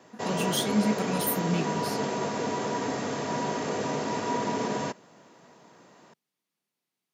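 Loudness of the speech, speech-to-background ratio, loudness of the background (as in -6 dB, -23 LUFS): -29.5 LUFS, 1.0 dB, -30.5 LUFS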